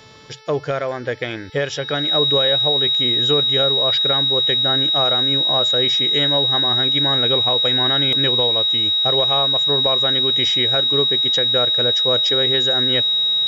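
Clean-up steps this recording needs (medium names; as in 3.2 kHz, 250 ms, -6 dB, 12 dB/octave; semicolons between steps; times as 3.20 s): de-hum 437.9 Hz, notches 13; band-stop 3.8 kHz, Q 30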